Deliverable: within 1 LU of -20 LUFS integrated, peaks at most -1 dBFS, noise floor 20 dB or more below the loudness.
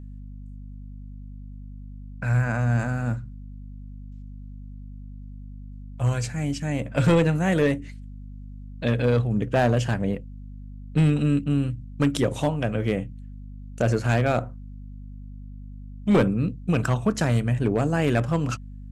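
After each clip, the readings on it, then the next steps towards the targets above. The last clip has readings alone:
clipped samples 0.5%; clipping level -13.0 dBFS; hum 50 Hz; highest harmonic 250 Hz; hum level -37 dBFS; loudness -24.0 LUFS; peak level -13.0 dBFS; loudness target -20.0 LUFS
-> clip repair -13 dBFS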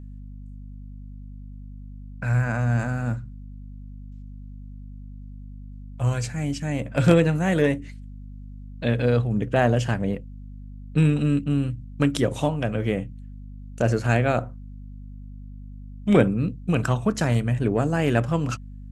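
clipped samples 0.0%; hum 50 Hz; highest harmonic 250 Hz; hum level -37 dBFS
-> de-hum 50 Hz, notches 5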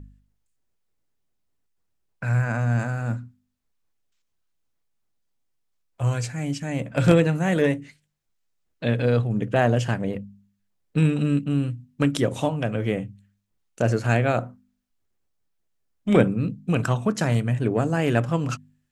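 hum not found; loudness -24.0 LUFS; peak level -4.0 dBFS; loudness target -20.0 LUFS
-> trim +4 dB; peak limiter -1 dBFS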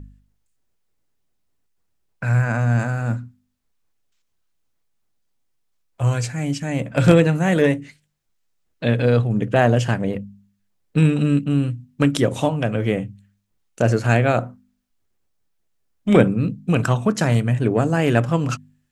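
loudness -20.0 LUFS; peak level -1.0 dBFS; noise floor -69 dBFS

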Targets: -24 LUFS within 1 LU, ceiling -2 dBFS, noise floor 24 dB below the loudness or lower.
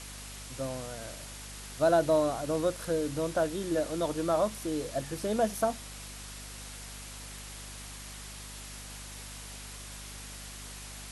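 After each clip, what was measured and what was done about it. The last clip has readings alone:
hum 50 Hz; highest harmonic 250 Hz; hum level -45 dBFS; noise floor -44 dBFS; noise floor target -58 dBFS; loudness -33.5 LUFS; peak level -14.0 dBFS; loudness target -24.0 LUFS
-> de-hum 50 Hz, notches 5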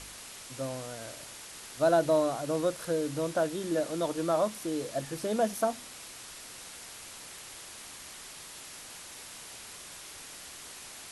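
hum not found; noise floor -47 dBFS; noise floor target -58 dBFS
-> noise print and reduce 11 dB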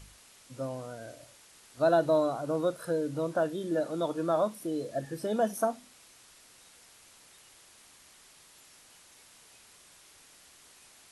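noise floor -58 dBFS; loudness -30.5 LUFS; peak level -14.0 dBFS; loudness target -24.0 LUFS
-> trim +6.5 dB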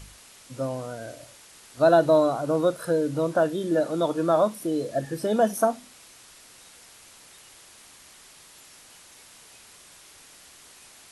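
loudness -24.0 LUFS; peak level -7.5 dBFS; noise floor -51 dBFS

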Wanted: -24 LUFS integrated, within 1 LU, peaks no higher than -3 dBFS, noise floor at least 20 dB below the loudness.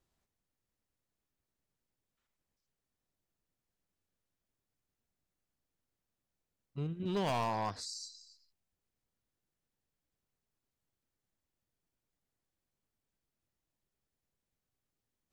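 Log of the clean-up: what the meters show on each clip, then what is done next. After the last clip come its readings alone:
clipped samples 0.4%; clipping level -29.0 dBFS; dropouts 1; longest dropout 3.2 ms; loudness -36.5 LUFS; peak level -29.0 dBFS; loudness target -24.0 LUFS
-> clip repair -29 dBFS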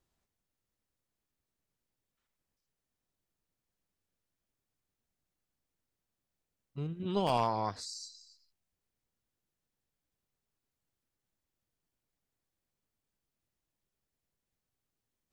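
clipped samples 0.0%; dropouts 1; longest dropout 3.2 ms
-> interpolate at 7.29 s, 3.2 ms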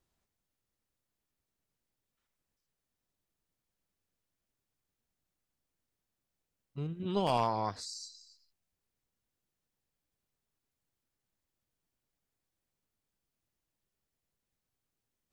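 dropouts 0; loudness -34.5 LUFS; peak level -20.0 dBFS; loudness target -24.0 LUFS
-> trim +10.5 dB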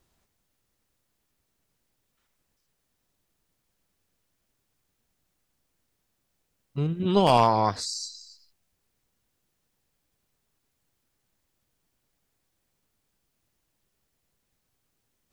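loudness -24.0 LUFS; peak level -9.5 dBFS; noise floor -77 dBFS

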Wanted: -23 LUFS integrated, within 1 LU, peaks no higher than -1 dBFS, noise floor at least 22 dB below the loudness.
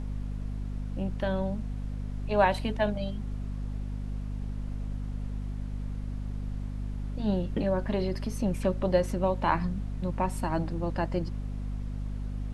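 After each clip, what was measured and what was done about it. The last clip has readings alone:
hum 50 Hz; highest harmonic 250 Hz; hum level -31 dBFS; noise floor -36 dBFS; noise floor target -54 dBFS; loudness -32.0 LUFS; peak level -9.0 dBFS; loudness target -23.0 LUFS
-> de-hum 50 Hz, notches 5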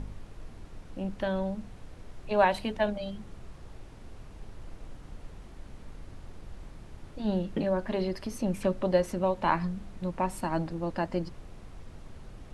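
hum not found; noise floor -48 dBFS; noise floor target -53 dBFS
-> noise print and reduce 6 dB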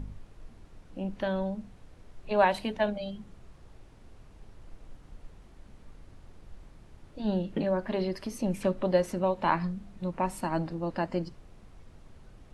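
noise floor -54 dBFS; loudness -30.5 LUFS; peak level -10.0 dBFS; loudness target -23.0 LUFS
-> trim +7.5 dB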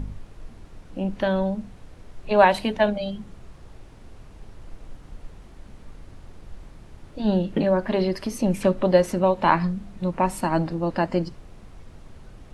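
loudness -23.0 LUFS; peak level -2.5 dBFS; noise floor -47 dBFS

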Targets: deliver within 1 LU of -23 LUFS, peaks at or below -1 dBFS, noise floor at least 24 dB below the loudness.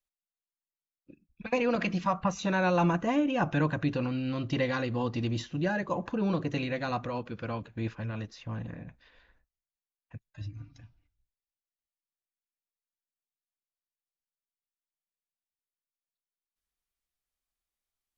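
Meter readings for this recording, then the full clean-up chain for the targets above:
loudness -30.5 LUFS; peak level -16.0 dBFS; loudness target -23.0 LUFS
-> trim +7.5 dB

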